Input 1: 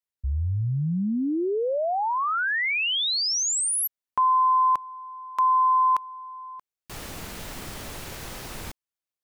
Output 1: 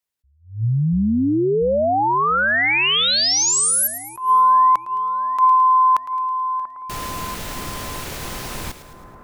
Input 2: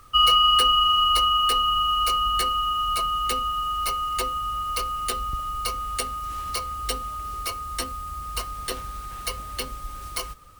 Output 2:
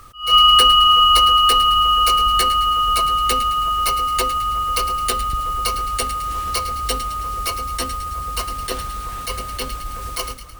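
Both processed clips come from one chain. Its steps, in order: split-band echo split 1600 Hz, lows 0.688 s, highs 0.108 s, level -12 dB; attack slew limiter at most 160 dB/s; gain +7 dB

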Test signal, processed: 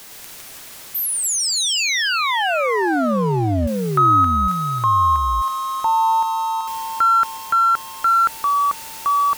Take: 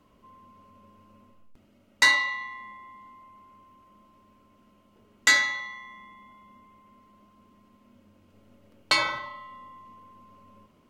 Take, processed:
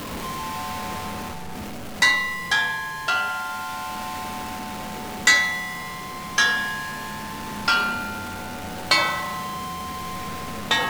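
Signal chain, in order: zero-crossing step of -32.5 dBFS; echoes that change speed 0.112 s, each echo -3 st, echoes 2; vocal rider within 4 dB 2 s; gain +1 dB

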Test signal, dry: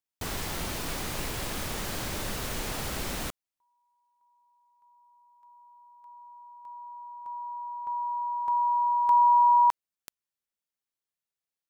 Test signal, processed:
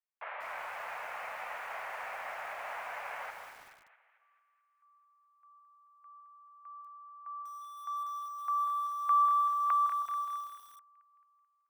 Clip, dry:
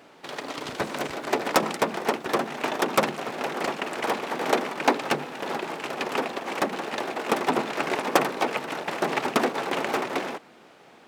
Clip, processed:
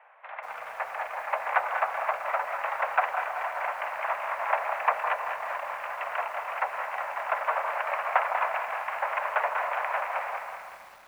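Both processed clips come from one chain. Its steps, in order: on a send: split-band echo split 1100 Hz, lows 0.159 s, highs 0.218 s, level -8.5 dB; on the sum: mistuned SSB +200 Hz 430–2200 Hz; lo-fi delay 0.192 s, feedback 55%, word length 8-bit, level -7.5 dB; gain -2.5 dB

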